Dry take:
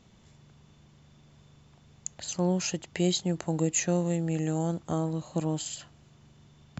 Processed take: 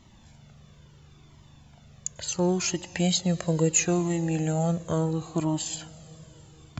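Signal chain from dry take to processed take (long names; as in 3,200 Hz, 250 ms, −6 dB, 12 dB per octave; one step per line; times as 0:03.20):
convolution reverb RT60 4.5 s, pre-delay 91 ms, DRR 18.5 dB
flanger whose copies keep moving one way falling 0.73 Hz
level +8.5 dB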